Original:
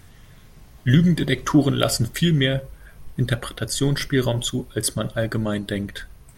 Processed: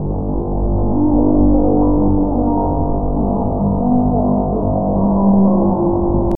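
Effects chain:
sign of each sample alone
Butterworth low-pass 530 Hz 48 dB per octave
dynamic equaliser 100 Hz, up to +3 dB, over −41 dBFS, Q 4.6
spring reverb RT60 2.6 s, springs 35 ms, chirp 35 ms, DRR −1 dB
pitch shifter +9.5 semitones
echo that builds up and dies away 84 ms, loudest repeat 8, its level −14.5 dB
level +4 dB

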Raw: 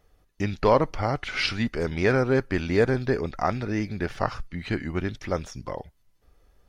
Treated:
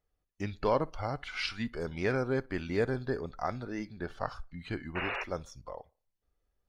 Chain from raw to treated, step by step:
noise reduction from a noise print of the clip's start 11 dB
0:03.85–0:04.25: high-shelf EQ 6,800 Hz −8 dB
0:04.95–0:05.24: sound drawn into the spectrogram noise 360–2,900 Hz −27 dBFS
on a send: tape delay 61 ms, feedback 39%, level −22.5 dB, low-pass 2,200 Hz
on the sum: level −8.5 dB

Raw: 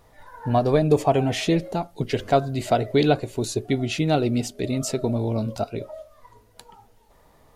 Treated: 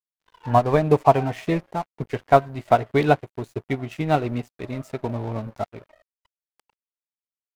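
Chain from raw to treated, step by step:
graphic EQ with 10 bands 125 Hz +4 dB, 1,000 Hz +9 dB, 2,000 Hz +6 dB, 4,000 Hz −6 dB, 8,000 Hz −4 dB
dead-zone distortion −33 dBFS
expander for the loud parts 1.5 to 1, over −35 dBFS
level +1 dB

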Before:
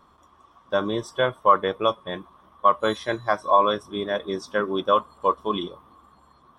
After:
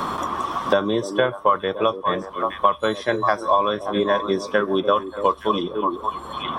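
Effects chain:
on a send: echo through a band-pass that steps 289 ms, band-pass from 340 Hz, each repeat 1.4 octaves, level −8 dB
on the sum: multiband upward and downward compressor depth 100%
level +2 dB

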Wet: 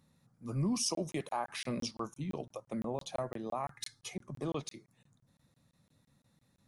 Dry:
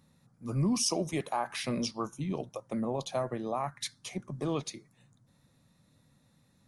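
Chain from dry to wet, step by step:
0:03.70–0:04.13: comb filter 2.4 ms, depth 73%
regular buffer underruns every 0.17 s, samples 1,024, zero, from 0:00.95
level −4 dB

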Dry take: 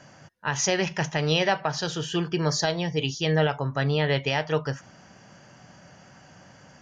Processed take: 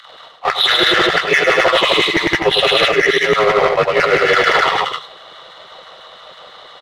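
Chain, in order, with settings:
partials spread apart or drawn together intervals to 84%
auto-filter high-pass saw down 6 Hz 330–1,900 Hz
power curve on the samples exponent 1.4
in parallel at −4.5 dB: gain into a clipping stage and back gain 19 dB
on the sum: octave-band graphic EQ 125/250/4,000 Hz +4/−9/+8 dB
loudspeakers that aren't time-aligned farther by 36 metres −5 dB, 62 metres −6 dB, 88 metres −7 dB
reversed playback
downward compressor 16 to 1, threshold −31 dBFS, peak gain reduction 16.5 dB
reversed playback
boost into a limiter +23.5 dB
level −1 dB

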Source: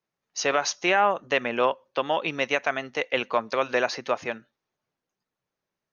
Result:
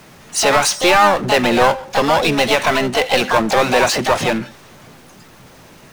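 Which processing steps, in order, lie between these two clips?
power curve on the samples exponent 0.5
pitch-shifted copies added +7 semitones −3 dB
bass and treble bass +6 dB, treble −1 dB
level +2.5 dB

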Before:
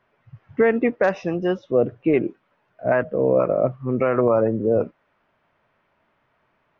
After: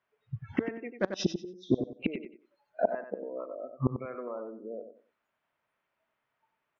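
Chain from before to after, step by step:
gain on a spectral selection 0:00.96–0:01.78, 380–3,000 Hz −16 dB
in parallel at −3 dB: downward compressor 6 to 1, threshold −30 dBFS, peak gain reduction 16 dB
on the sum: gate with flip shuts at −16 dBFS, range −27 dB
noise reduction from a noise print of the clip's start 27 dB
treble cut that deepens with the level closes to 1,500 Hz, closed at −30 dBFS
spectral tilt +2 dB per octave
on a send: repeating echo 93 ms, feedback 24%, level −8.5 dB
on the sum: level +7 dB

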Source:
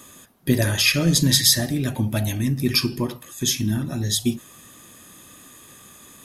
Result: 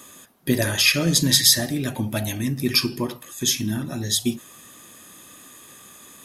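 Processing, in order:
low-shelf EQ 140 Hz −9.5 dB
level +1 dB

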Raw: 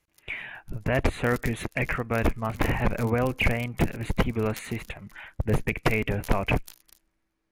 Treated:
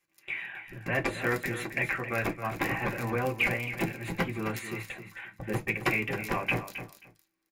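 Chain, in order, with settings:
high-shelf EQ 10,000 Hz +6.5 dB
repeating echo 267 ms, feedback 17%, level −11 dB
convolution reverb RT60 0.15 s, pre-delay 3 ms, DRR 0 dB
level −6 dB

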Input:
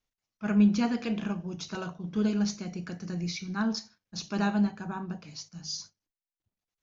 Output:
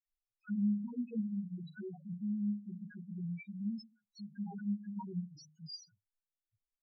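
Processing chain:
downward compressor 2 to 1, threshold −36 dBFS, peak gain reduction 10 dB
multi-voice chorus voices 4, 0.75 Hz, delay 17 ms, depth 2.4 ms
all-pass dispersion lows, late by 66 ms, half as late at 1,700 Hz
spectral peaks only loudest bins 2
level +1.5 dB

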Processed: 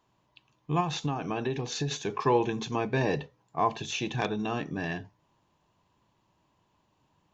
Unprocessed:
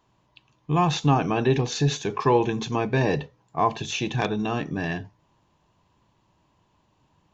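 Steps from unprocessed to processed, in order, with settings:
low-shelf EQ 120 Hz −5 dB
0:00.80–0:01.91: downward compressor 6 to 1, threshold −23 dBFS, peak gain reduction 8.5 dB
level −4 dB

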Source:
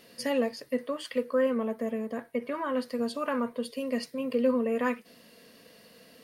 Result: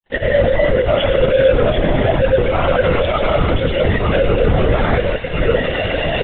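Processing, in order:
delay that plays each chunk backwards 470 ms, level −14 dB
camcorder AGC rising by 11 dB per second
high-pass filter 420 Hz 6 dB per octave
downward expander −50 dBFS
high-shelf EQ 2,500 Hz −6.5 dB
comb filter 1.5 ms, depth 37%
in parallel at +0.5 dB: output level in coarse steps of 19 dB
on the sum: fuzz pedal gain 53 dB, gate −57 dBFS
granular cloud, pitch spread up and down by 0 semitones
on a send: delay with a high-pass on its return 113 ms, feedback 82%, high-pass 2,000 Hz, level −6 dB
on the sum: linear-prediction vocoder at 8 kHz whisper
every bin expanded away from the loudest bin 1.5 to 1
level +1 dB

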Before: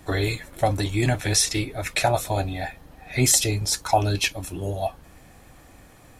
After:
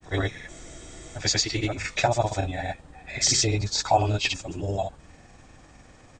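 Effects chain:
hearing-aid frequency compression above 3,300 Hz 1.5 to 1
granular cloud, pitch spread up and down by 0 semitones
frozen spectrum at 0:00.51, 0.67 s

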